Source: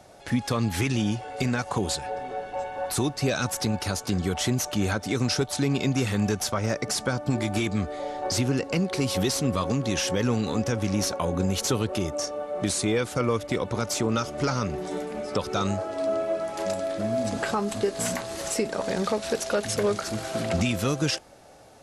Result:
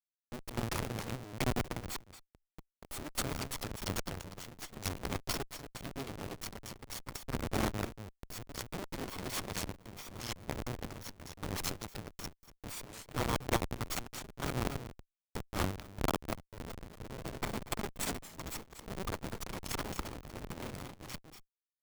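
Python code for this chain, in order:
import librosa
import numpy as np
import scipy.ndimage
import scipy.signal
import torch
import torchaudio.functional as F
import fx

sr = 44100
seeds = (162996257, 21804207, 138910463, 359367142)

p1 = fx.lower_of_two(x, sr, delay_ms=0.9)
p2 = fx.high_shelf(p1, sr, hz=4800.0, db=11.5)
p3 = fx.schmitt(p2, sr, flips_db=-23.5)
p4 = fx.low_shelf(p3, sr, hz=200.0, db=-11.5)
p5 = fx.tube_stage(p4, sr, drive_db=35.0, bias=0.4)
p6 = p5 + fx.echo_single(p5, sr, ms=240, db=-6.5, dry=0)
p7 = fx.rider(p6, sr, range_db=4, speed_s=0.5)
p8 = fx.tremolo_random(p7, sr, seeds[0], hz=3.5, depth_pct=55)
p9 = fx.cheby_harmonics(p8, sr, harmonics=(2, 3, 6), levels_db=(-14, -10, -28), full_scale_db=-25.5)
p10 = fx.record_warp(p9, sr, rpm=45.0, depth_cents=100.0)
y = p10 * librosa.db_to_amplitude(17.5)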